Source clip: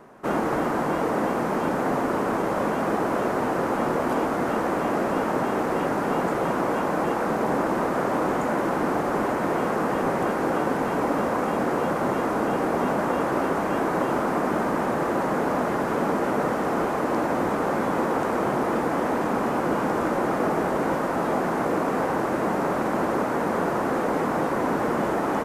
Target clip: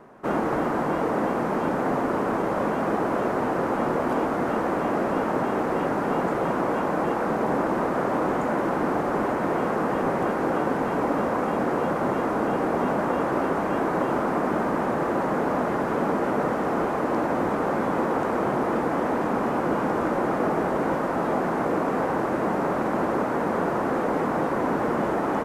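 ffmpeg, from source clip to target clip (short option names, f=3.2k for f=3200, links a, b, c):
-af "highshelf=f=3.6k:g=-7"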